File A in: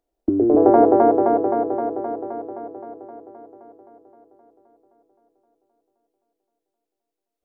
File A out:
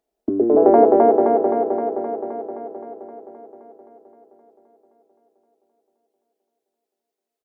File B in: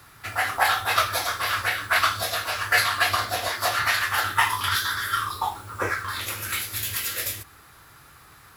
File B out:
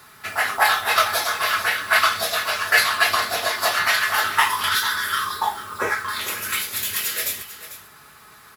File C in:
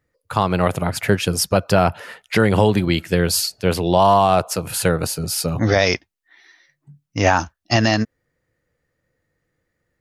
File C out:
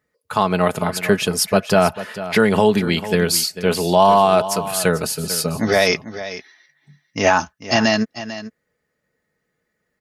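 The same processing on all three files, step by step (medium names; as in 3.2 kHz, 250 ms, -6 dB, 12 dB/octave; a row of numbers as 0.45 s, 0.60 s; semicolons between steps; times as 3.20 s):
high-pass 160 Hz 6 dB/octave; comb 4.7 ms, depth 49%; delay 445 ms -13.5 dB; peak normalisation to -1.5 dBFS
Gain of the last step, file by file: +1.0 dB, +2.5 dB, +0.5 dB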